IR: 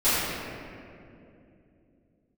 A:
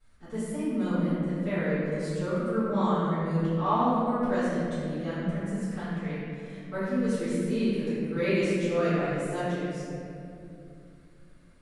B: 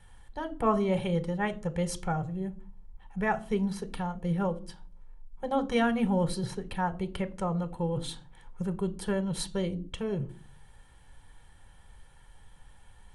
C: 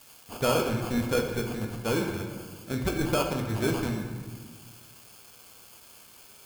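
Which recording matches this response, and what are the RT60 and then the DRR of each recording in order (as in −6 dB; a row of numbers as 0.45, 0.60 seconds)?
A; 2.7, 0.45, 1.6 seconds; −18.5, 11.0, 1.5 decibels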